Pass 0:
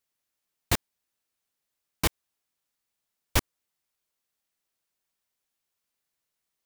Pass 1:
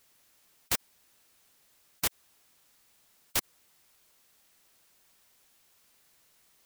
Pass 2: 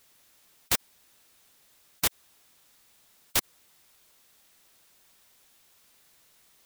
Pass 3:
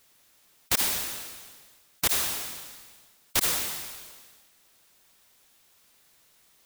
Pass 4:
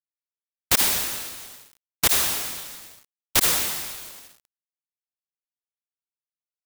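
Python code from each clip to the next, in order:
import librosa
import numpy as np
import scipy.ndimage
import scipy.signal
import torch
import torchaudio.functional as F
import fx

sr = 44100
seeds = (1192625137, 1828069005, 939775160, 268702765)

y1 = fx.spectral_comp(x, sr, ratio=4.0)
y1 = F.gain(torch.from_numpy(y1), -3.5).numpy()
y2 = fx.peak_eq(y1, sr, hz=3600.0, db=2.5, octaves=0.2)
y2 = F.gain(torch.from_numpy(y2), 3.5).numpy()
y3 = fx.sustainer(y2, sr, db_per_s=36.0)
y4 = fx.quant_dither(y3, sr, seeds[0], bits=8, dither='none')
y4 = F.gain(torch.from_numpy(y4), 5.5).numpy()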